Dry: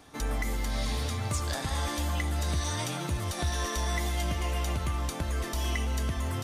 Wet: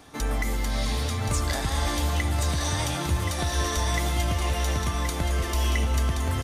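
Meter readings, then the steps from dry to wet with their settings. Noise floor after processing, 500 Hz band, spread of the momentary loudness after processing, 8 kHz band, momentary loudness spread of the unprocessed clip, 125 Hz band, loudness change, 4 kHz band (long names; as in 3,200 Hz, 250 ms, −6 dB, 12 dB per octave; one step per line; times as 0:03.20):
−30 dBFS, +5.0 dB, 2 LU, +5.0 dB, 2 LU, +5.0 dB, +5.0 dB, +5.0 dB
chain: single-tap delay 1,075 ms −6 dB
level +4 dB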